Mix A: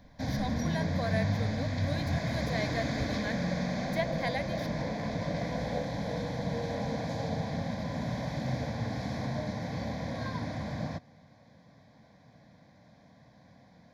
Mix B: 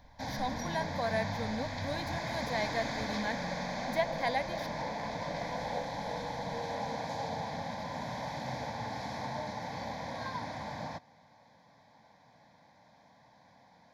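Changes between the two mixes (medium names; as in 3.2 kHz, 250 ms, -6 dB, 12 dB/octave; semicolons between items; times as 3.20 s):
background: add bass shelf 400 Hz -11 dB; master: add peaking EQ 880 Hz +12.5 dB 0.26 oct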